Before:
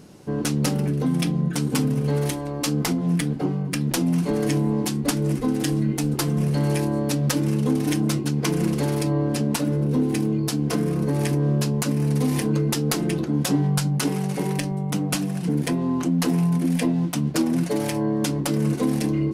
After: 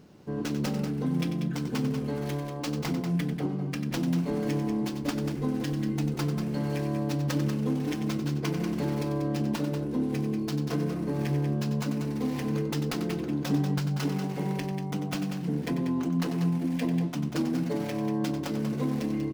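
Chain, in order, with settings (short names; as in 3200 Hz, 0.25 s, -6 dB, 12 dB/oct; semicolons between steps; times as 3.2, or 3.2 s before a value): median filter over 5 samples; loudspeakers at several distances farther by 32 m -10 dB, 65 m -8 dB; gain -7 dB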